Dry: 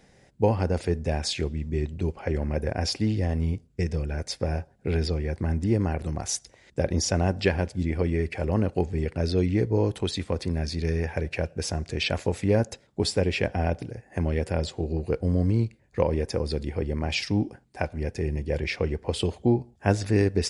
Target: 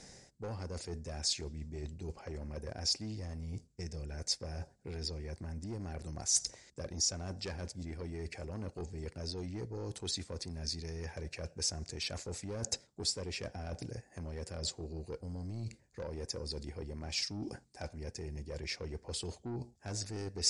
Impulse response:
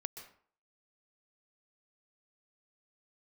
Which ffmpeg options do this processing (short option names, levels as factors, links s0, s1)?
-af "asoftclip=type=tanh:threshold=0.106,areverse,acompressor=threshold=0.01:ratio=10,areverse,aexciter=amount=4.2:drive=5.8:freq=4400,lowpass=f=8200:w=0.5412,lowpass=f=8200:w=1.3066,volume=1.12"